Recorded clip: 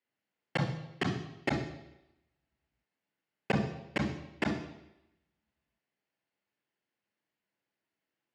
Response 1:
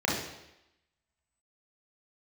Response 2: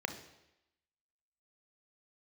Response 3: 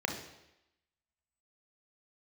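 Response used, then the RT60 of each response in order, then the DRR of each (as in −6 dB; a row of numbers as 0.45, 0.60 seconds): 3; 0.90, 0.90, 0.90 seconds; −5.0, 6.5, 2.5 decibels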